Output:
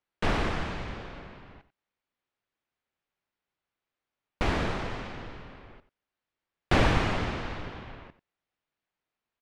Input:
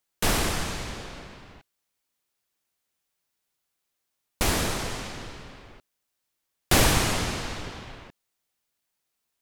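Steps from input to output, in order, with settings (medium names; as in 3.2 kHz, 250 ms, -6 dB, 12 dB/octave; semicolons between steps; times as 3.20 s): low-pass 2.6 kHz 12 dB/octave; delay 91 ms -15.5 dB; trim -1.5 dB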